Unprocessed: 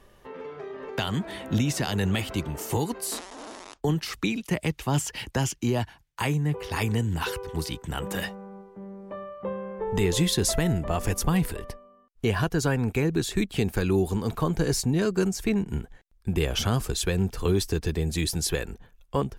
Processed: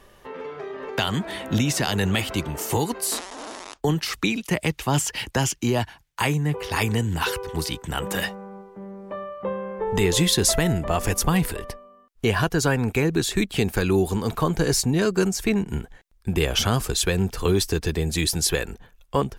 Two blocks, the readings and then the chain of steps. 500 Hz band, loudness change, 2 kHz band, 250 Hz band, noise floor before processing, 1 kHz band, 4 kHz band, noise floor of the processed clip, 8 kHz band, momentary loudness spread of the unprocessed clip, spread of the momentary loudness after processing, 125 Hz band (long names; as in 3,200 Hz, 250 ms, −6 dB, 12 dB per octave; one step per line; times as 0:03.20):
+4.0 dB, +3.5 dB, +6.0 dB, +2.5 dB, −59 dBFS, +5.0 dB, +6.0 dB, −56 dBFS, +6.0 dB, 14 LU, 13 LU, +2.0 dB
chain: low-shelf EQ 440 Hz −4.5 dB
level +6 dB